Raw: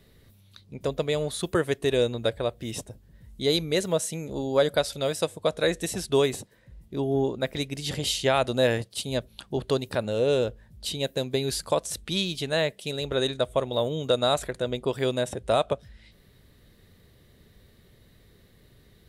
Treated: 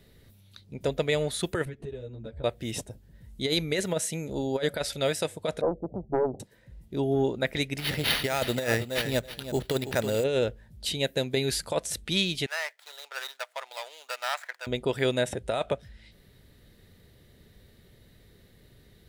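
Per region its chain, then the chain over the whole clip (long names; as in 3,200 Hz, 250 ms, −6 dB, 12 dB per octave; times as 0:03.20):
0:01.65–0:02.44: RIAA equalisation playback + downward compressor 16 to 1, threshold −31 dBFS + string-ensemble chorus
0:05.61–0:06.40: Chebyshev low-pass with heavy ripple 810 Hz, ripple 3 dB + highs frequency-modulated by the lows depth 0.62 ms
0:07.78–0:10.24: sample-rate reduction 7,500 Hz + repeating echo 325 ms, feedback 15%, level −11 dB
0:12.46–0:14.67: running median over 15 samples + high-pass filter 920 Hz 24 dB per octave
whole clip: notch filter 1,100 Hz, Q 8.5; dynamic equaliser 2,000 Hz, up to +7 dB, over −47 dBFS, Q 1.7; compressor whose output falls as the input rises −23 dBFS, ratio −0.5; level −1 dB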